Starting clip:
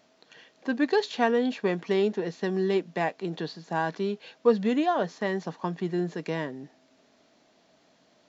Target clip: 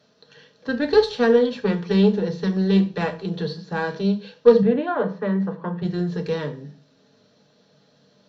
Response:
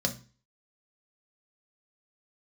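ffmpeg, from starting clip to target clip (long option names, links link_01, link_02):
-filter_complex "[0:a]aeval=exprs='0.398*(cos(1*acos(clip(val(0)/0.398,-1,1)))-cos(1*PI/2))+0.0251*(cos(3*acos(clip(val(0)/0.398,-1,1)))-cos(3*PI/2))+0.0316*(cos(6*acos(clip(val(0)/0.398,-1,1)))-cos(6*PI/2))':channel_layout=same,asettb=1/sr,asplit=3[link_01][link_02][link_03];[link_01]atrim=end=4.624[link_04];[link_02]atrim=start=4.62:end=5.82,asetpts=PTS-STARTPTS,afade=type=in:duration=0.004:curve=qsin,afade=type=out:start_time=1.196:duration=0.004:curve=qsin,acrossover=split=160 2400:gain=0.0891 1 0.0794[link_05][link_06][link_07];[link_05][link_06][link_07]amix=inputs=3:normalize=0[link_08];[link_03]atrim=start=5.816[link_09];[link_04][link_08]acrossfade=duration=0.004:curve1=hsin:curve2=qsin[link_10];[link_10][link_09]acrossfade=duration=0.004:curve1=qsin:curve2=hsin[link_11];[1:a]atrim=start_sample=2205,atrim=end_sample=6615,asetrate=37044,aresample=44100[link_12];[link_11][link_12]afir=irnorm=-1:irlink=0,volume=-4.5dB"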